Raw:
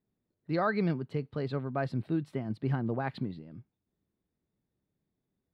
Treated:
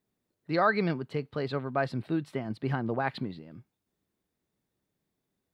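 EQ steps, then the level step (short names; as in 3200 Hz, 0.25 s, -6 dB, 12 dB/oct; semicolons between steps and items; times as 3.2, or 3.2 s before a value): low shelf 370 Hz -9 dB; +6.5 dB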